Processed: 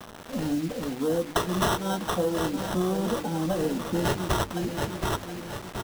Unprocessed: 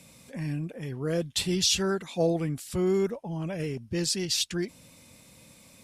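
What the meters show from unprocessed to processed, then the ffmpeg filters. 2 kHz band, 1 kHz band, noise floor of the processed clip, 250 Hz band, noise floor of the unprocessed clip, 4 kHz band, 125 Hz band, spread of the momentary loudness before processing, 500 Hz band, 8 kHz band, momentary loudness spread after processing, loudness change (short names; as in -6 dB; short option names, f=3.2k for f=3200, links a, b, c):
+4.5 dB, +12.0 dB, -43 dBFS, +3.0 dB, -55 dBFS, -5.0 dB, +1.0 dB, 10 LU, +1.5 dB, -5.5 dB, 7 LU, +0.5 dB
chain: -filter_complex "[0:a]aresample=16000,asoftclip=type=hard:threshold=-21.5dB,aresample=44100,highpass=150,equalizer=f=4.4k:t=o:w=0.93:g=8,bandreject=f=540:w=16,aecho=1:1:3.8:0.8,aecho=1:1:722|1444|2166|2888:0.224|0.101|0.0453|0.0204,acrossover=split=1000[a][b];[b]acrusher=samples=19:mix=1:aa=0.000001[c];[a][c]amix=inputs=2:normalize=0,acompressor=threshold=-29dB:ratio=12,bandreject=f=50:t=h:w=6,bandreject=f=100:t=h:w=6,bandreject=f=150:t=h:w=6,bandreject=f=200:t=h:w=6,bandreject=f=250:t=h:w=6,bandreject=f=300:t=h:w=6,bandreject=f=350:t=h:w=6,bandreject=f=400:t=h:w=6,bandreject=f=450:t=h:w=6,bandreject=f=500:t=h:w=6,acrusher=bits=7:mix=0:aa=0.000001,volume=7.5dB"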